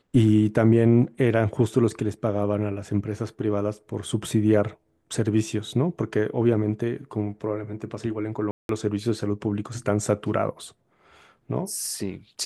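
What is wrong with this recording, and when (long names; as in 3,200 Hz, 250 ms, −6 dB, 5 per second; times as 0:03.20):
0:08.51–0:08.69: drop-out 182 ms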